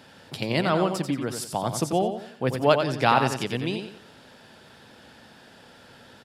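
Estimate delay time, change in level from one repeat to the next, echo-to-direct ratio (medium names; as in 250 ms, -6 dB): 90 ms, -9.0 dB, -6.5 dB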